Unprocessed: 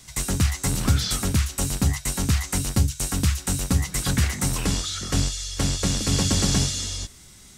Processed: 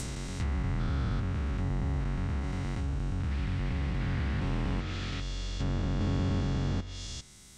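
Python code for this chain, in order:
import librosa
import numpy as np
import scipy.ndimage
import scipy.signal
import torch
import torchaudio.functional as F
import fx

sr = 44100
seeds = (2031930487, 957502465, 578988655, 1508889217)

y = fx.spec_steps(x, sr, hold_ms=400)
y = fx.dmg_noise_band(y, sr, seeds[0], low_hz=1700.0, high_hz=5400.0, level_db=-37.0, at=(3.3, 5.2), fade=0.02)
y = fx.env_lowpass_down(y, sr, base_hz=1700.0, full_db=-23.0)
y = y * librosa.db_to_amplitude(-3.5)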